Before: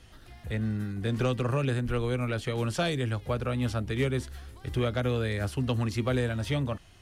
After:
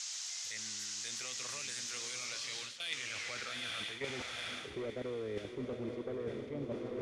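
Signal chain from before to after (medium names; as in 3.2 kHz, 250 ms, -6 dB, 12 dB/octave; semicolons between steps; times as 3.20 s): in parallel at -7 dB: saturation -26 dBFS, distortion -13 dB; on the sum: peaking EQ 2.1 kHz +9 dB 0.3 oct; band noise 630–6200 Hz -44 dBFS; band-pass sweep 6.9 kHz -> 400 Hz, 2.14–4.84 s; dynamic bell 990 Hz, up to -7 dB, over -55 dBFS, Q 2; sine folder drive 4 dB, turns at -21 dBFS; level held to a coarse grid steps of 15 dB; echo that smears into a reverb 906 ms, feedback 53%, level -4.5 dB; reverse; compression 16:1, threshold -40 dBFS, peak gain reduction 16.5 dB; reverse; trim +3.5 dB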